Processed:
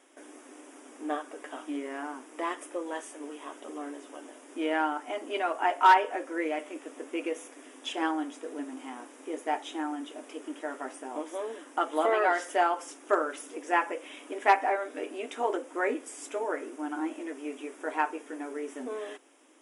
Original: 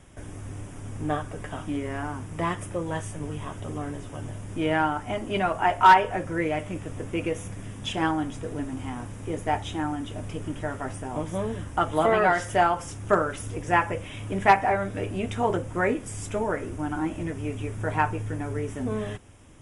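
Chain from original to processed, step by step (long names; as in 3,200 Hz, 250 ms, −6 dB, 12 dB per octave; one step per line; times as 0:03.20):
linear-phase brick-wall high-pass 250 Hz
level −4 dB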